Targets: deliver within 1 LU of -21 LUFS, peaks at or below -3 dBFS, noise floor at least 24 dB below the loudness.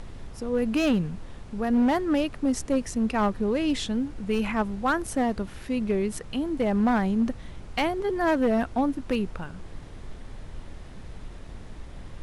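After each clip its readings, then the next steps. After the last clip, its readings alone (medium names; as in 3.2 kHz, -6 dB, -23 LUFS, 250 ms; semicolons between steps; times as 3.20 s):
clipped samples 1.2%; clipping level -17.5 dBFS; noise floor -42 dBFS; noise floor target -51 dBFS; loudness -26.5 LUFS; peak level -17.5 dBFS; loudness target -21.0 LUFS
-> clip repair -17.5 dBFS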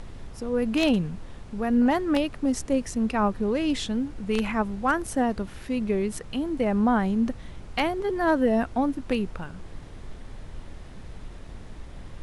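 clipped samples 0.0%; noise floor -42 dBFS; noise floor target -50 dBFS
-> noise print and reduce 8 dB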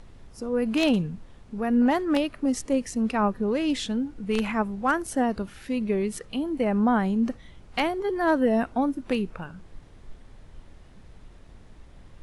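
noise floor -50 dBFS; loudness -26.0 LUFS; peak level -8.5 dBFS; loudness target -21.0 LUFS
-> trim +5 dB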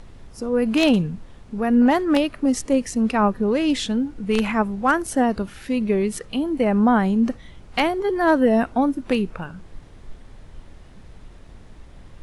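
loudness -21.0 LUFS; peak level -3.5 dBFS; noise floor -45 dBFS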